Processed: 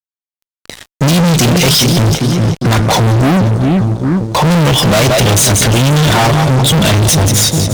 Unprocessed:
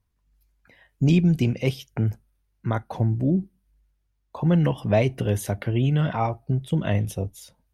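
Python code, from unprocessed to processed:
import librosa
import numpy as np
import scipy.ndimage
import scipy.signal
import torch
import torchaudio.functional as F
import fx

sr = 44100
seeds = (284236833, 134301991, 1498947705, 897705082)

y = fx.band_shelf(x, sr, hz=5500.0, db=14.5, octaves=1.7)
y = fx.echo_split(y, sr, split_hz=500.0, low_ms=402, high_ms=176, feedback_pct=52, wet_db=-13.5)
y = fx.fuzz(y, sr, gain_db=40.0, gate_db=-49.0)
y = y * librosa.db_to_amplitude(5.0)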